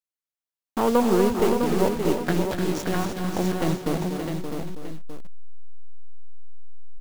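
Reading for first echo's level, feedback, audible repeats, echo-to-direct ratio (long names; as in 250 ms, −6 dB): −8.5 dB, repeats not evenly spaced, 7, −1.0 dB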